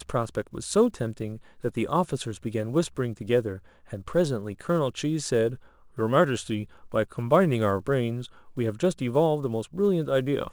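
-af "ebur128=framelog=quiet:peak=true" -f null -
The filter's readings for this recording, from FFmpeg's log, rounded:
Integrated loudness:
  I:         -26.7 LUFS
  Threshold: -36.9 LUFS
Loudness range:
  LRA:         2.8 LU
  Threshold: -47.0 LUFS
  LRA low:   -28.4 LUFS
  LRA high:  -25.6 LUFS
True peak:
  Peak:       -7.5 dBFS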